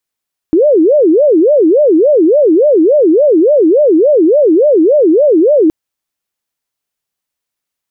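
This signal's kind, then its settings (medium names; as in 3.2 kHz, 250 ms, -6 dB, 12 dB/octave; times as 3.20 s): siren wail 309–607 Hz 3.5 per s sine -4.5 dBFS 5.17 s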